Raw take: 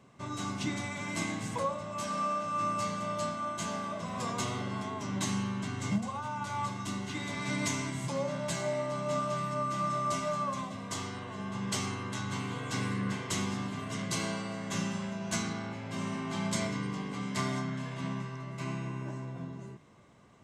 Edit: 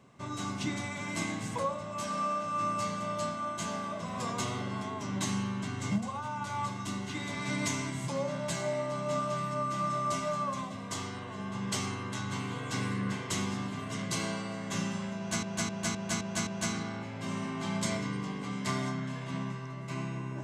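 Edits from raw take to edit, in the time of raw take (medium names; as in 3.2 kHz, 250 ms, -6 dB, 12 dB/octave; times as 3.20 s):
15.17–15.43 s: loop, 6 plays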